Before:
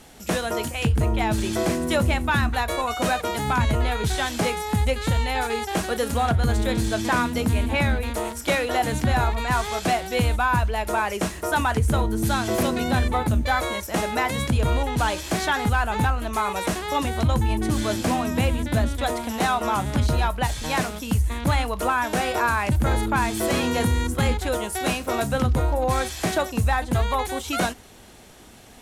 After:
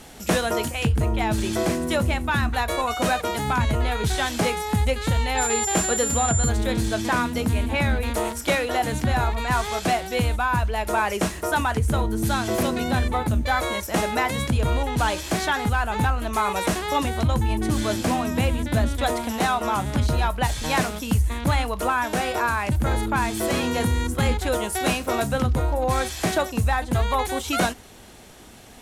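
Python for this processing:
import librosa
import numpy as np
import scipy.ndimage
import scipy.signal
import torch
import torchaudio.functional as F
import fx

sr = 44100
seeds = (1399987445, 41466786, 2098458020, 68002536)

y = fx.rider(x, sr, range_db=10, speed_s=0.5)
y = fx.dmg_tone(y, sr, hz=7200.0, level_db=-24.0, at=(5.37, 6.48), fade=0.02)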